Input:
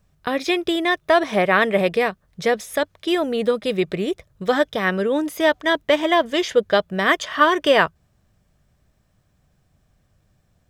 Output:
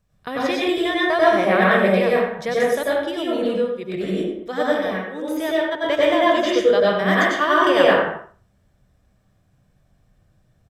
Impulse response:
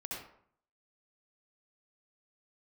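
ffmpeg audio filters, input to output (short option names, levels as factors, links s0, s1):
-filter_complex "[0:a]asplit=3[s0][s1][s2];[s0]afade=t=out:st=3.1:d=0.02[s3];[s1]tremolo=f=1.5:d=0.96,afade=t=in:st=3.1:d=0.02,afade=t=out:st=5.71:d=0.02[s4];[s2]afade=t=in:st=5.71:d=0.02[s5];[s3][s4][s5]amix=inputs=3:normalize=0,asplit=2[s6][s7];[s7]adelay=83,lowpass=f=3200:p=1,volume=0.316,asplit=2[s8][s9];[s9]adelay=83,lowpass=f=3200:p=1,volume=0.22,asplit=2[s10][s11];[s11]adelay=83,lowpass=f=3200:p=1,volume=0.22[s12];[s6][s8][s10][s12]amix=inputs=4:normalize=0[s13];[1:a]atrim=start_sample=2205,afade=t=out:st=0.31:d=0.01,atrim=end_sample=14112,asetrate=29547,aresample=44100[s14];[s13][s14]afir=irnorm=-1:irlink=0,volume=0.75"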